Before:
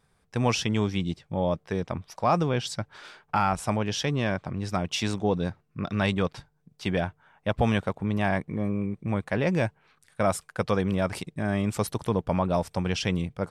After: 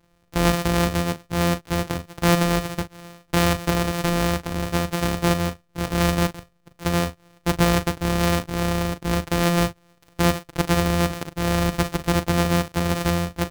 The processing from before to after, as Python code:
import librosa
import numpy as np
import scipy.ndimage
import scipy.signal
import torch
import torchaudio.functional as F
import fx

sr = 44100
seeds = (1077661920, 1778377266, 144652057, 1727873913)

y = np.r_[np.sort(x[:len(x) // 256 * 256].reshape(-1, 256), axis=1).ravel(), x[len(x) // 256 * 256:]]
y = fx.doubler(y, sr, ms=39.0, db=-12.0)
y = F.gain(torch.from_numpy(y), 5.0).numpy()